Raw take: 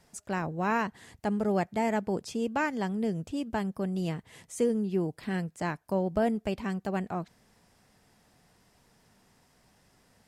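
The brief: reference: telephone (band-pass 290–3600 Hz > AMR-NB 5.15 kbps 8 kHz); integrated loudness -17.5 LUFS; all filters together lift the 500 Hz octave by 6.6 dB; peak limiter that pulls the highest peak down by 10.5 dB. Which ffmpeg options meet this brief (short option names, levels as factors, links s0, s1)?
-af "equalizer=f=500:t=o:g=9,alimiter=limit=0.0944:level=0:latency=1,highpass=290,lowpass=3600,volume=5.96" -ar 8000 -c:a libopencore_amrnb -b:a 5150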